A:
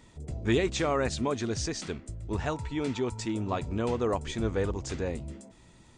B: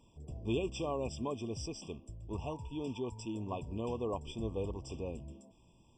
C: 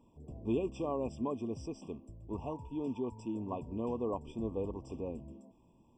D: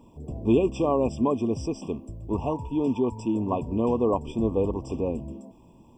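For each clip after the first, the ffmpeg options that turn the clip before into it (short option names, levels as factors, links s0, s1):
-af "afftfilt=real='re*eq(mod(floor(b*sr/1024/1200),2),0)':imag='im*eq(mod(floor(b*sr/1024/1200),2),0)':win_size=1024:overlap=0.75,volume=0.398"
-af "equalizer=f=250:t=o:w=1:g=8,equalizer=f=500:t=o:w=1:g=3,equalizer=f=1000:t=o:w=1:g=5,equalizer=f=4000:t=o:w=1:g=-9,equalizer=f=8000:t=o:w=1:g=-4,volume=0.596"
-af "acontrast=39,volume=2.11"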